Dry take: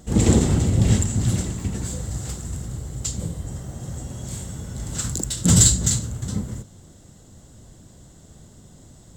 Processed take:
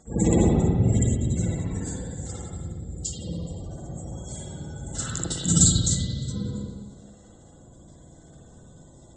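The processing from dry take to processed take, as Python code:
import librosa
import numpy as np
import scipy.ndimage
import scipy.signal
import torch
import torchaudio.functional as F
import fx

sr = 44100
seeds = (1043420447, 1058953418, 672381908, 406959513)

y = scipy.signal.sosfilt(scipy.signal.butter(4, 9700.0, 'lowpass', fs=sr, output='sos'), x)
y = fx.low_shelf(y, sr, hz=410.0, db=-9.0)
y = fx.spec_gate(y, sr, threshold_db=-20, keep='strong')
y = fx.rev_spring(y, sr, rt60_s=1.6, pass_ms=(53, 59), chirp_ms=40, drr_db=-7.5)
y = y * 10.0 ** (-3.0 / 20.0)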